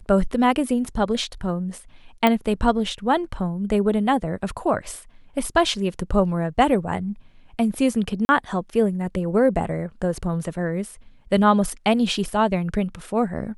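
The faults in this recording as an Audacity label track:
2.270000	2.270000	pop -6 dBFS
8.250000	8.290000	dropout 40 ms

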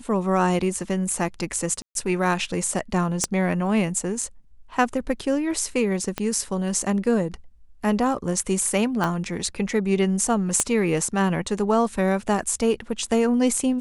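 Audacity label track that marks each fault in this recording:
1.820000	1.950000	dropout 132 ms
3.240000	3.240000	pop -8 dBFS
6.180000	6.180000	pop -11 dBFS
9.040000	9.040000	pop -11 dBFS
10.600000	10.600000	pop -8 dBFS

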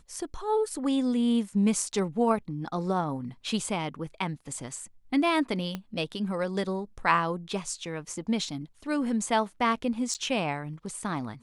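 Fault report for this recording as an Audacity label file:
5.750000	5.750000	pop -19 dBFS
10.140000	10.150000	dropout 8 ms

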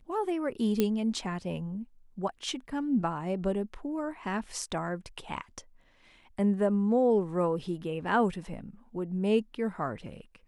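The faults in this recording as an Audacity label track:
0.800000	0.800000	pop -12 dBFS

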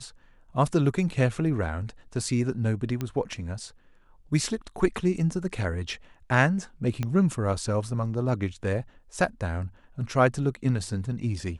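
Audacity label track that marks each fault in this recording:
3.010000	3.010000	pop -17 dBFS
7.030000	7.030000	pop -16 dBFS

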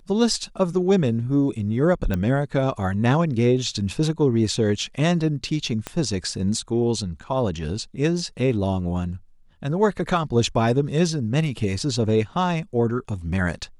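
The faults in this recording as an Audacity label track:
2.140000	2.140000	pop -13 dBFS
5.870000	5.870000	pop -13 dBFS

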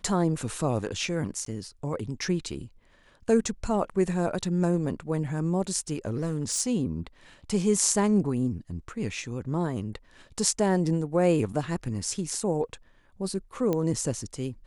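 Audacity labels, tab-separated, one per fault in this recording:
1.450000	1.460000	dropout 13 ms
6.050000	6.610000	clipped -23 dBFS
13.730000	13.730000	pop -15 dBFS

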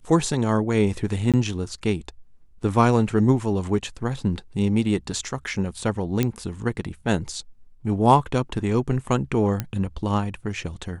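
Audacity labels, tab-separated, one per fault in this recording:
1.320000	1.340000	dropout 17 ms
6.230000	6.230000	pop -8 dBFS
9.600000	9.600000	pop -11 dBFS

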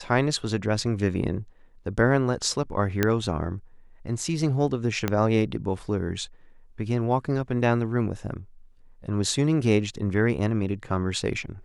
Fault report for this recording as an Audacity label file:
3.030000	3.030000	pop -7 dBFS
5.080000	5.080000	pop -10 dBFS

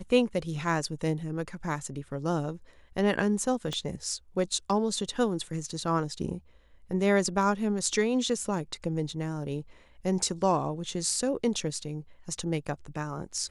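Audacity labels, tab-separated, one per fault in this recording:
3.730000	3.730000	pop -20 dBFS

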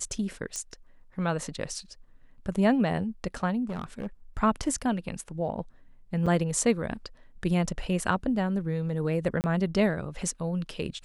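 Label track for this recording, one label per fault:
0.560000	0.560000	pop -19 dBFS
3.690000	4.070000	clipped -29 dBFS
6.260000	6.270000	dropout 6 ms
9.410000	9.440000	dropout 29 ms

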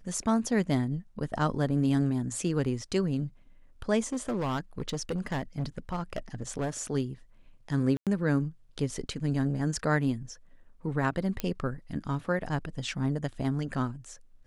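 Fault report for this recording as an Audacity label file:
4.000000	6.800000	clipped -26.5 dBFS
7.970000	8.070000	dropout 97 ms
11.400000	11.400000	pop -15 dBFS

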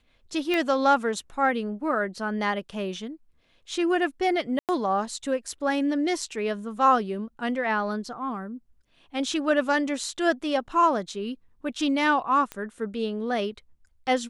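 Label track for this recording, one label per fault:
0.540000	0.540000	pop -14 dBFS
4.590000	4.690000	dropout 98 ms
12.520000	12.520000	pop -18 dBFS

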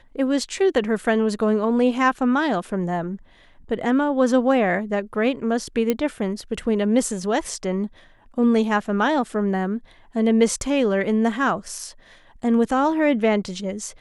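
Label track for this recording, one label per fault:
5.900000	5.900000	pop -8 dBFS

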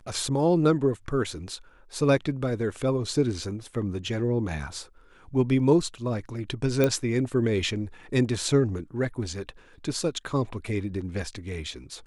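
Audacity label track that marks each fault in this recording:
6.840000	6.840000	pop -10 dBFS

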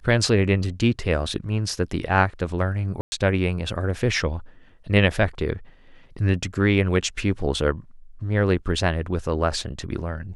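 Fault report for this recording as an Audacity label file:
3.010000	3.120000	dropout 110 ms

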